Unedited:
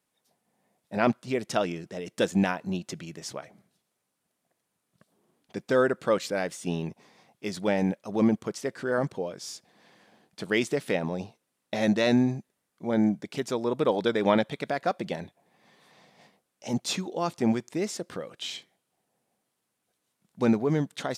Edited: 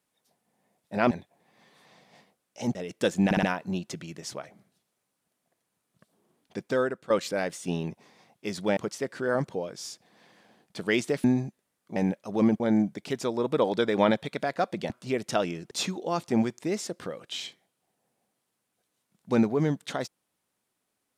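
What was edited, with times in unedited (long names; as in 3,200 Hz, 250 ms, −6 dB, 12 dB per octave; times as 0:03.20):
0:01.11–0:01.92: swap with 0:15.17–0:16.81
0:02.42: stutter 0.06 s, 4 plays
0:05.57–0:06.09: fade out, to −13.5 dB
0:07.76–0:08.40: move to 0:12.87
0:10.87–0:12.15: remove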